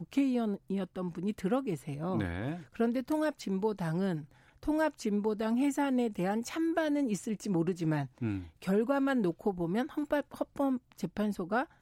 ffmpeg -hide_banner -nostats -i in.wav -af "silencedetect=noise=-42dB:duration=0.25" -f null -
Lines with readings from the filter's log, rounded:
silence_start: 4.24
silence_end: 4.63 | silence_duration: 0.39